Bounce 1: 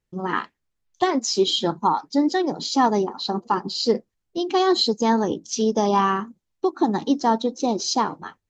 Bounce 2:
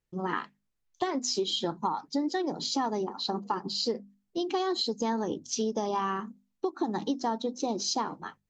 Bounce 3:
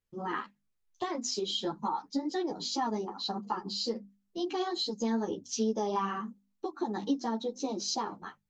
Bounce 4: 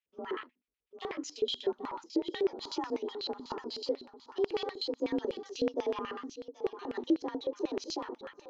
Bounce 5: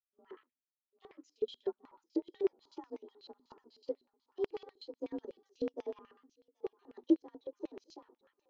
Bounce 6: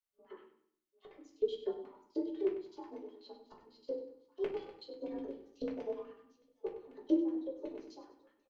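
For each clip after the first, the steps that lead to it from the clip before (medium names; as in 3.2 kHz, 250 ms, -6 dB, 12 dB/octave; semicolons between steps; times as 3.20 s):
hum notches 50/100/150/200/250 Hz; compression, threshold -22 dBFS, peak gain reduction 8.5 dB; trim -4 dB
three-phase chorus
thinning echo 781 ms, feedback 39%, high-pass 340 Hz, level -11 dB; frequency shift +45 Hz; LFO band-pass square 8.1 Hz 410–2600 Hz; trim +5.5 dB
upward expansion 2.5:1, over -41 dBFS; trim +2 dB
feedback delay 97 ms, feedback 35%, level -11.5 dB; reverberation RT60 0.45 s, pre-delay 3 ms, DRR -2 dB; trim -5 dB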